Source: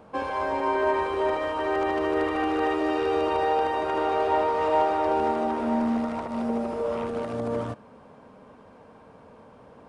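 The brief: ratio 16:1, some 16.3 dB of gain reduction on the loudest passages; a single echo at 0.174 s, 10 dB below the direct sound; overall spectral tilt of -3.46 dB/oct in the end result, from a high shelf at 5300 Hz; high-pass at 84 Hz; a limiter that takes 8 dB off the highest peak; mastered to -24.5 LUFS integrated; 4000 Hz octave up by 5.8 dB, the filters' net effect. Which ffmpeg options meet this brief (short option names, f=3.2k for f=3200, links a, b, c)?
-af "highpass=84,equalizer=f=4k:t=o:g=6,highshelf=f=5.3k:g=6,acompressor=threshold=-35dB:ratio=16,alimiter=level_in=9.5dB:limit=-24dB:level=0:latency=1,volume=-9.5dB,aecho=1:1:174:0.316,volume=17.5dB"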